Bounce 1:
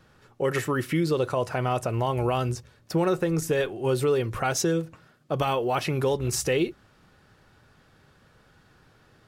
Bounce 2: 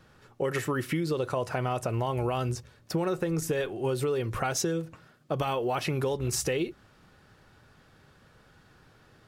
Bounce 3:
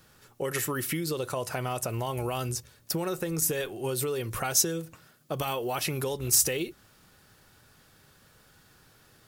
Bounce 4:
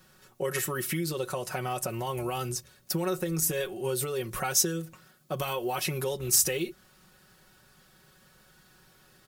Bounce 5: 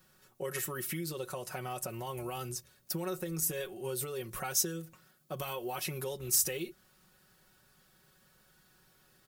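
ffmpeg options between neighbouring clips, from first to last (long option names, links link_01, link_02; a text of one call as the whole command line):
ffmpeg -i in.wav -af "acompressor=threshold=-25dB:ratio=6" out.wav
ffmpeg -i in.wav -af "aemphasis=mode=production:type=75fm,volume=-2dB" out.wav
ffmpeg -i in.wav -af "aecho=1:1:5.4:0.65,volume=-2dB" out.wav
ffmpeg -i in.wav -af "highshelf=frequency=12000:gain=6.5,volume=-7dB" out.wav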